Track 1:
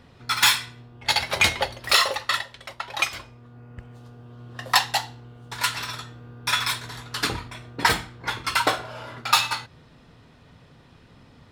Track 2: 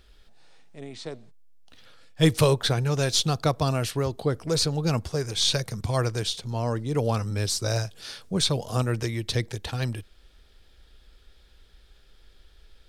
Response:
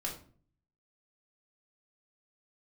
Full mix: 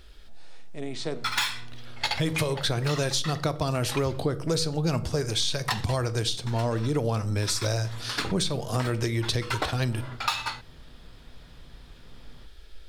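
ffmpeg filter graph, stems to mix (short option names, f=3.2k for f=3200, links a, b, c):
-filter_complex "[0:a]equalizer=f=13k:t=o:w=1.2:g=-6.5,adelay=950,volume=-3dB[a];[1:a]alimiter=limit=-16dB:level=0:latency=1:release=485,volume=3dB,asplit=3[b][c][d];[c]volume=-10dB[e];[d]apad=whole_len=549664[f];[a][f]sidechaincompress=threshold=-31dB:ratio=8:attack=6.6:release=187[g];[2:a]atrim=start_sample=2205[h];[e][h]afir=irnorm=-1:irlink=0[i];[g][b][i]amix=inputs=3:normalize=0,acompressor=threshold=-23dB:ratio=4"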